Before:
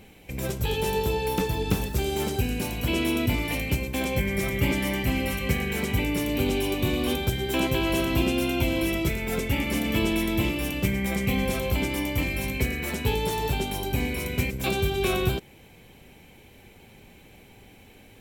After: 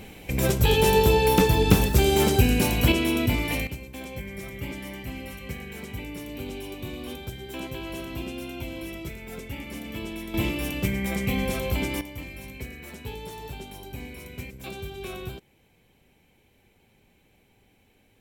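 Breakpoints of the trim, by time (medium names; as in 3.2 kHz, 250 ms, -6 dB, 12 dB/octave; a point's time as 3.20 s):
+7 dB
from 2.92 s +1 dB
from 3.67 s -10.5 dB
from 10.34 s -1 dB
from 12.01 s -11.5 dB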